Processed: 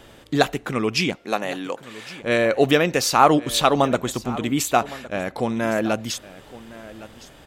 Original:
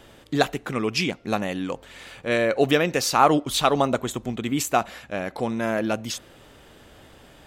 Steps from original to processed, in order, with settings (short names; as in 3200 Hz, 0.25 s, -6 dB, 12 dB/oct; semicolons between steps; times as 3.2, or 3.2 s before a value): 1.15–2.22 HPF 330 Hz 12 dB/oct; echo 1.112 s -18 dB; gain +2.5 dB